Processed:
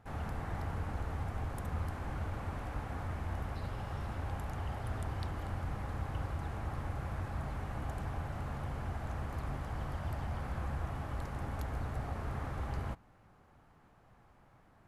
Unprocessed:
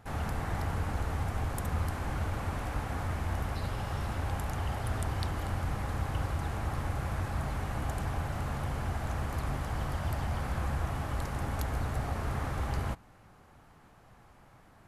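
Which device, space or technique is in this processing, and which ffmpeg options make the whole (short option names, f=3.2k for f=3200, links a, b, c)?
behind a face mask: -af "highshelf=f=3.4k:g=-7.5,volume=-5dB"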